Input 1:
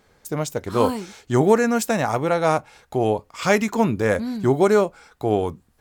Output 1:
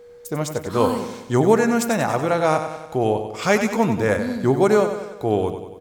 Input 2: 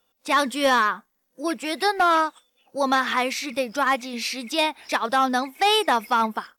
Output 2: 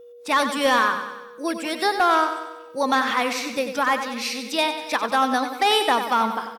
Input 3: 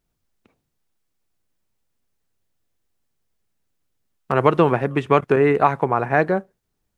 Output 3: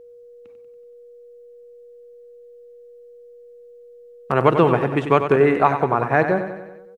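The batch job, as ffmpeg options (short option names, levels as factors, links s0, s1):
-af "aecho=1:1:94|188|282|376|470|564:0.355|0.195|0.107|0.059|0.0325|0.0179,aeval=exprs='val(0)+0.00794*sin(2*PI*480*n/s)':c=same"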